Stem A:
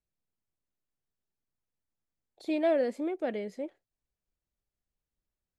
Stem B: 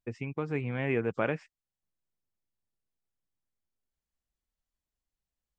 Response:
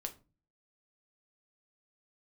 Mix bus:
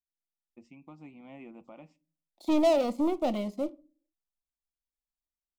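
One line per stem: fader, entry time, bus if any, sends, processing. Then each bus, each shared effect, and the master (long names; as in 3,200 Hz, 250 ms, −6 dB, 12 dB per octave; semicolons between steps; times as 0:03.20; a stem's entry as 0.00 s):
−2.5 dB, 0.00 s, send −3 dB, leveller curve on the samples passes 3; expander for the loud parts 1.5 to 1, over −43 dBFS
−13.5 dB, 0.50 s, send −5.5 dB, brickwall limiter −19.5 dBFS, peak gain reduction 6 dB; automatic ducking −8 dB, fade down 0.95 s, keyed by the first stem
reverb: on, RT60 0.30 s, pre-delay 6 ms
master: phaser with its sweep stopped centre 440 Hz, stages 6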